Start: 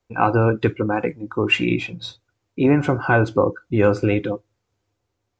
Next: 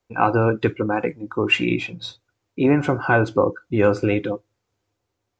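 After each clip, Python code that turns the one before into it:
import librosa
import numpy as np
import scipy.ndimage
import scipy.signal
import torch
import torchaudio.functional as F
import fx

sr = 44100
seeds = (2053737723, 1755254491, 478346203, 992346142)

y = fx.low_shelf(x, sr, hz=130.0, db=-5.0)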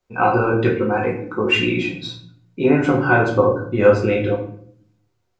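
y = fx.room_shoebox(x, sr, seeds[0], volume_m3=83.0, walls='mixed', distance_m=1.0)
y = F.gain(torch.from_numpy(y), -2.0).numpy()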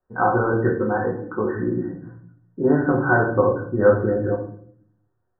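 y = fx.brickwall_lowpass(x, sr, high_hz=1900.0)
y = F.gain(torch.from_numpy(y), -2.5).numpy()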